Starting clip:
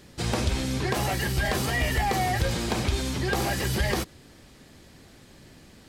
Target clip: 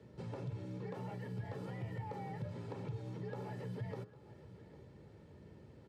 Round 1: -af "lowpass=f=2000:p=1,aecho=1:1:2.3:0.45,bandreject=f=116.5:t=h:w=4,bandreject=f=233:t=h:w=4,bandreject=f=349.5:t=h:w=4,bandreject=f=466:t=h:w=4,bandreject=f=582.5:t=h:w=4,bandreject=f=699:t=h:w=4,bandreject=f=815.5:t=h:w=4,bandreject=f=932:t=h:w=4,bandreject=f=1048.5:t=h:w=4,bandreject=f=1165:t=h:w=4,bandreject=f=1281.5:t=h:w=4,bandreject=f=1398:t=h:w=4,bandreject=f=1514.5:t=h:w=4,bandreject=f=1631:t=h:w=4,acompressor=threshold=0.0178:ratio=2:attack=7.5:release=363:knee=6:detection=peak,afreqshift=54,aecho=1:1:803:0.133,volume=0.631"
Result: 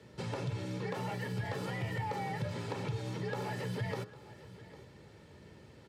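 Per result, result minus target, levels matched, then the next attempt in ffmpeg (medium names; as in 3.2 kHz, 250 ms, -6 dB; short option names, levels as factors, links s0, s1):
2 kHz band +6.5 dB; compression: peak gain reduction -5.5 dB
-af "lowpass=f=520:p=1,aecho=1:1:2.3:0.45,bandreject=f=116.5:t=h:w=4,bandreject=f=233:t=h:w=4,bandreject=f=349.5:t=h:w=4,bandreject=f=466:t=h:w=4,bandreject=f=582.5:t=h:w=4,bandreject=f=699:t=h:w=4,bandreject=f=815.5:t=h:w=4,bandreject=f=932:t=h:w=4,bandreject=f=1048.5:t=h:w=4,bandreject=f=1165:t=h:w=4,bandreject=f=1281.5:t=h:w=4,bandreject=f=1398:t=h:w=4,bandreject=f=1514.5:t=h:w=4,bandreject=f=1631:t=h:w=4,acompressor=threshold=0.0178:ratio=2:attack=7.5:release=363:knee=6:detection=peak,afreqshift=54,aecho=1:1:803:0.133,volume=0.631"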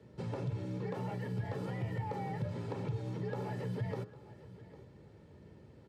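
compression: peak gain reduction -5.5 dB
-af "lowpass=f=520:p=1,aecho=1:1:2.3:0.45,bandreject=f=116.5:t=h:w=4,bandreject=f=233:t=h:w=4,bandreject=f=349.5:t=h:w=4,bandreject=f=466:t=h:w=4,bandreject=f=582.5:t=h:w=4,bandreject=f=699:t=h:w=4,bandreject=f=815.5:t=h:w=4,bandreject=f=932:t=h:w=4,bandreject=f=1048.5:t=h:w=4,bandreject=f=1165:t=h:w=4,bandreject=f=1281.5:t=h:w=4,bandreject=f=1398:t=h:w=4,bandreject=f=1514.5:t=h:w=4,bandreject=f=1631:t=h:w=4,acompressor=threshold=0.00501:ratio=2:attack=7.5:release=363:knee=6:detection=peak,afreqshift=54,aecho=1:1:803:0.133,volume=0.631"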